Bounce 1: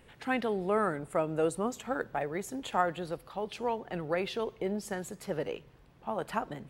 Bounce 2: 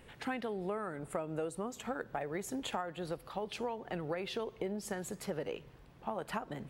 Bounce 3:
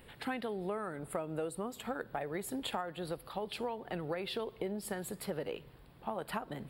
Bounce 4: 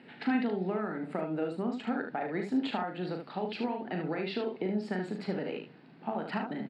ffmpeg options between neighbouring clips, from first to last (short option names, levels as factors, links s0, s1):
-af "acompressor=threshold=0.0178:ratio=10,volume=1.19"
-af "aexciter=amount=1.3:drive=0.9:freq=3400"
-af "highpass=f=170:w=0.5412,highpass=f=170:w=1.3066,equalizer=f=180:t=q:w=4:g=3,equalizer=f=250:t=q:w=4:g=6,equalizer=f=530:t=q:w=4:g=-7,equalizer=f=1100:t=q:w=4:g=-8,equalizer=f=3400:t=q:w=4:g=-9,lowpass=f=4500:w=0.5412,lowpass=f=4500:w=1.3066,aecho=1:1:38|74:0.473|0.473,volume=1.68"